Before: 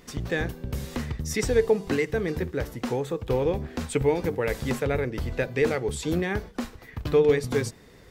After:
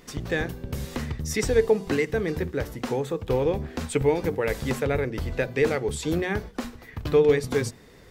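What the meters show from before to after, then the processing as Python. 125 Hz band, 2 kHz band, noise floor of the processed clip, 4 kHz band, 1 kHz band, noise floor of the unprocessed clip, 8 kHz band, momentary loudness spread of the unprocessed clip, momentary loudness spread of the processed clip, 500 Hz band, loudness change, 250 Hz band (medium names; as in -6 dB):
+0.5 dB, +1.0 dB, -50 dBFS, +1.0 dB, +1.0 dB, -51 dBFS, +1.0 dB, 10 LU, 11 LU, +1.0 dB, +1.0 dB, +0.5 dB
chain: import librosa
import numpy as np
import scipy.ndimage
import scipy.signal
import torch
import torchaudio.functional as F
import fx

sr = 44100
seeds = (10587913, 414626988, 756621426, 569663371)

y = fx.hum_notches(x, sr, base_hz=60, count=4)
y = y * librosa.db_to_amplitude(1.0)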